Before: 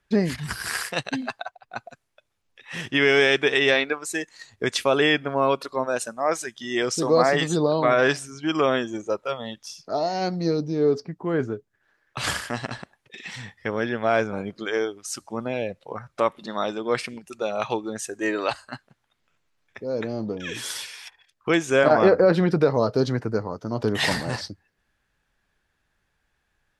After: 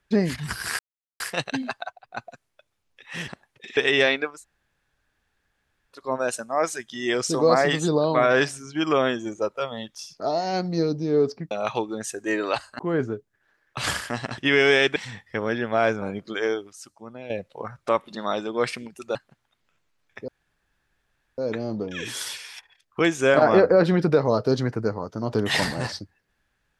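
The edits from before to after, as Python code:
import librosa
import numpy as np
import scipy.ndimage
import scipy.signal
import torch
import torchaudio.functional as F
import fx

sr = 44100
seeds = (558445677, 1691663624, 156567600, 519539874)

y = fx.edit(x, sr, fx.insert_silence(at_s=0.79, length_s=0.41),
    fx.swap(start_s=2.87, length_s=0.58, other_s=12.78, other_length_s=0.49),
    fx.room_tone_fill(start_s=4.01, length_s=1.69, crossfade_s=0.24),
    fx.clip_gain(start_s=15.04, length_s=0.57, db=-11.0),
    fx.move(start_s=17.46, length_s=1.28, to_s=11.19),
    fx.insert_room_tone(at_s=19.87, length_s=1.1), tone=tone)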